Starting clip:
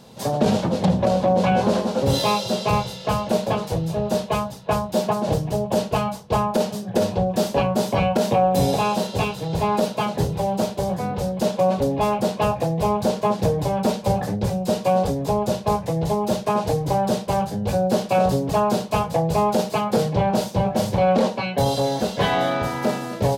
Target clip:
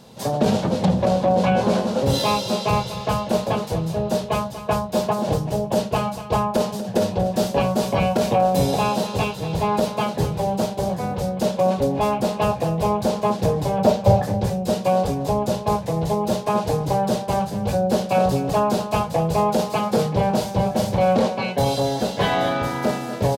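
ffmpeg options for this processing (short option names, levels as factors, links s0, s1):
-filter_complex "[0:a]asettb=1/sr,asplit=3[s0][s1][s2];[s0]atrim=end=13.784[s3];[s1]atrim=start=13.78:end=14.22,asetpts=PTS-STARTPTS,afade=t=in:d=0.004:c=qsin,afade=t=out:st=0.436:d=0.004:c=qsin,equalizer=f=100:t=o:w=0.67:g=12,equalizer=f=630:t=o:w=0.67:g=8,equalizer=f=10000:t=o:w=0.67:g=-6[s4];[s2]atrim=start=14.216[s5];[s3][s4]acrossfade=d=0.004:c1=hsin:c2=qsin[s6];[s6][s5]acrossfade=d=0.004:c1=qsin:c2=hsin,aecho=1:1:240:0.237"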